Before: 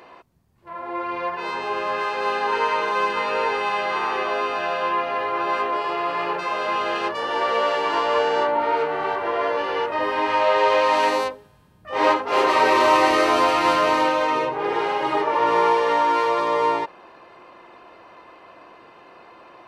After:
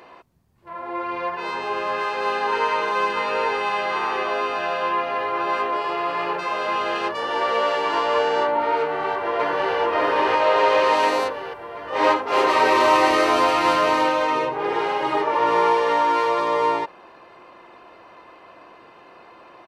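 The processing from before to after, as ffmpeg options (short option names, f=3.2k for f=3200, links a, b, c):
-filter_complex "[0:a]asplit=2[a][b];[b]afade=t=in:st=8.8:d=0.01,afade=t=out:st=9.76:d=0.01,aecho=0:1:590|1180|1770|2360|2950|3540|4130|4720|5310|5900|6490:0.944061|0.61364|0.398866|0.259263|0.168521|0.109538|0.0712|0.04628|0.030082|0.0195533|0.0127096[c];[a][c]amix=inputs=2:normalize=0"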